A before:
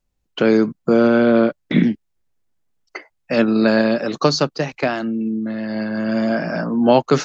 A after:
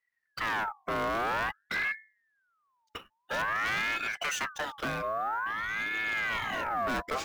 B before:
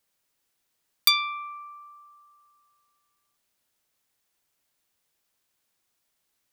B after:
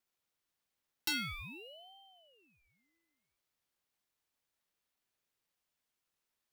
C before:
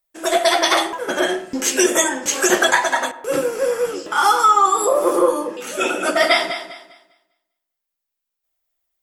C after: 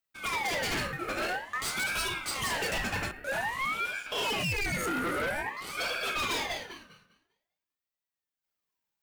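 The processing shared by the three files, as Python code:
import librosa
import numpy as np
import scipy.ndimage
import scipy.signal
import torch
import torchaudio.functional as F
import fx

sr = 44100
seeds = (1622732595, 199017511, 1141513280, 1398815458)

p1 = fx.hum_notches(x, sr, base_hz=50, count=4)
p2 = fx.sample_hold(p1, sr, seeds[0], rate_hz=13000.0, jitter_pct=0)
p3 = p1 + (p2 * librosa.db_to_amplitude(-7.0))
p4 = np.clip(10.0 ** (17.0 / 20.0) * p3, -1.0, 1.0) / 10.0 ** (17.0 / 20.0)
p5 = fx.ring_lfo(p4, sr, carrier_hz=1400.0, swing_pct=40, hz=0.5)
y = p5 * librosa.db_to_amplitude(-9.0)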